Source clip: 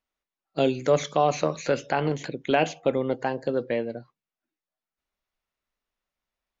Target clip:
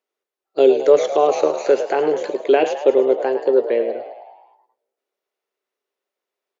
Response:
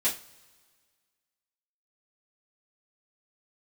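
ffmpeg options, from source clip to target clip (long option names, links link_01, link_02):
-filter_complex "[0:a]highpass=frequency=400:width_type=q:width=5,asplit=8[link_01][link_02][link_03][link_04][link_05][link_06][link_07][link_08];[link_02]adelay=106,afreqshift=60,volume=-10.5dB[link_09];[link_03]adelay=212,afreqshift=120,volume=-15.4dB[link_10];[link_04]adelay=318,afreqshift=180,volume=-20.3dB[link_11];[link_05]adelay=424,afreqshift=240,volume=-25.1dB[link_12];[link_06]adelay=530,afreqshift=300,volume=-30dB[link_13];[link_07]adelay=636,afreqshift=360,volume=-34.9dB[link_14];[link_08]adelay=742,afreqshift=420,volume=-39.8dB[link_15];[link_01][link_09][link_10][link_11][link_12][link_13][link_14][link_15]amix=inputs=8:normalize=0,asplit=2[link_16][link_17];[1:a]atrim=start_sample=2205[link_18];[link_17][link_18]afir=irnorm=-1:irlink=0,volume=-23.5dB[link_19];[link_16][link_19]amix=inputs=2:normalize=0"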